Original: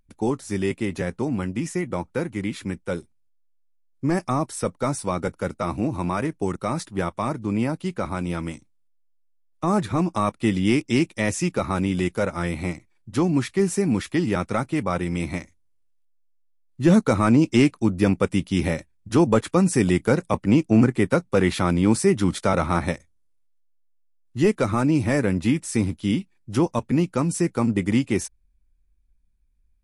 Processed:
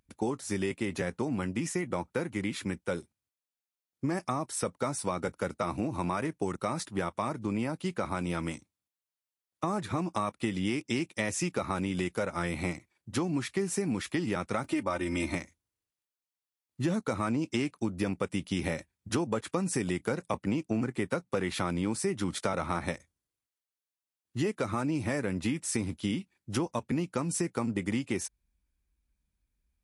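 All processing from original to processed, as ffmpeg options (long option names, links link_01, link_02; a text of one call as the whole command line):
ffmpeg -i in.wav -filter_complex "[0:a]asettb=1/sr,asplit=3[link_01][link_02][link_03];[link_01]atrim=end=14.644[link_04];[link_02]atrim=start=14.64:end=15.35,asetpts=PTS-STARTPTS,afade=type=in:duration=0.004:curve=qsin,afade=type=out:start_time=0.706:duration=0.004:curve=qsin,acompressor=mode=upward:threshold=-33dB:ratio=2.5:attack=3.2:release=140:knee=2.83:detection=peak,aecho=1:1:3.3:0.76,atrim=end_sample=31311[link_05];[link_03]atrim=start=15.346[link_06];[link_04][link_05]acrossfade=duration=0.004:curve1=hsin:curve2=qsin[link_07];[link_07][link_06]acrossfade=duration=0.004:curve1=qsin:curve2=hsin,highpass=61,lowshelf=frequency=380:gain=-4.5,acompressor=threshold=-27dB:ratio=6" out.wav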